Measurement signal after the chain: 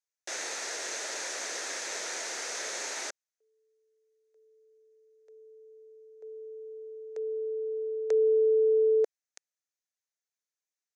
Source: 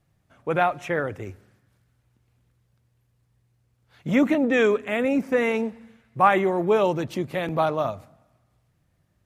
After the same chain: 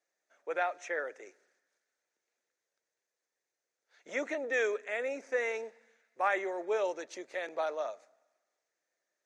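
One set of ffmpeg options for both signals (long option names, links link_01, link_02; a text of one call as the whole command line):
ffmpeg -i in.wav -af "highpass=frequency=440:width=0.5412,highpass=frequency=440:width=1.3066,equalizer=frequency=800:width_type=q:width=4:gain=-4,equalizer=frequency=1100:width_type=q:width=4:gain=-8,equalizer=frequency=1800:width_type=q:width=4:gain=4,equalizer=frequency=3000:width_type=q:width=4:gain=-7,equalizer=frequency=6300:width_type=q:width=4:gain=9,lowpass=frequency=8200:width=0.5412,lowpass=frequency=8200:width=1.3066,volume=-8dB" out.wav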